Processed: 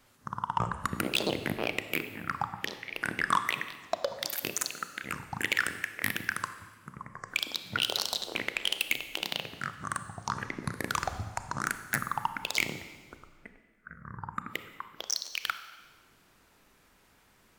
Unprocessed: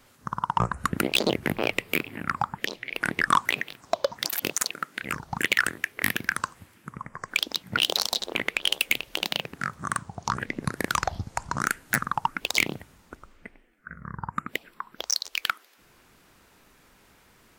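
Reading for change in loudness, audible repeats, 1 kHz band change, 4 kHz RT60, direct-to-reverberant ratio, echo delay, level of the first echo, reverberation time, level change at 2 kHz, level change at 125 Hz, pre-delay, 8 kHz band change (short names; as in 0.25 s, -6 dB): -5.0 dB, none, -5.0 dB, 1.3 s, 10.0 dB, none, none, 1.4 s, -5.0 dB, -5.0 dB, 28 ms, -5.0 dB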